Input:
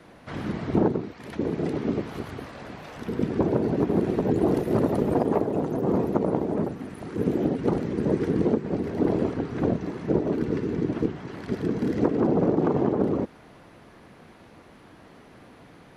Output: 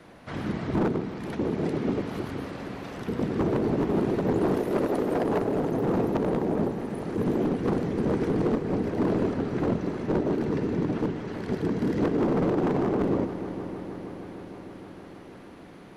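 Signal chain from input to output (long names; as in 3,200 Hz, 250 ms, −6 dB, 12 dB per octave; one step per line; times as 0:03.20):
0:04.56–0:05.24: high-pass filter 270 Hz 12 dB per octave
hard clipping −20.5 dBFS, distortion −11 dB
echo machine with several playback heads 156 ms, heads all three, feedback 75%, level −17.5 dB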